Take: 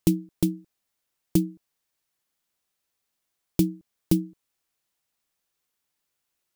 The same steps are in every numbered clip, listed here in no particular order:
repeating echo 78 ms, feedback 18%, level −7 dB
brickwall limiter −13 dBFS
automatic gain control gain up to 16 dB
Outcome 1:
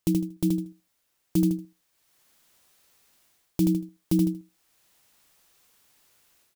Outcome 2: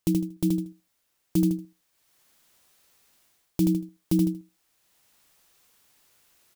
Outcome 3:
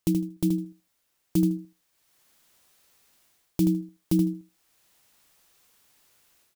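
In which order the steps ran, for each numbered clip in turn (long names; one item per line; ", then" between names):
automatic gain control, then repeating echo, then brickwall limiter
repeating echo, then automatic gain control, then brickwall limiter
automatic gain control, then brickwall limiter, then repeating echo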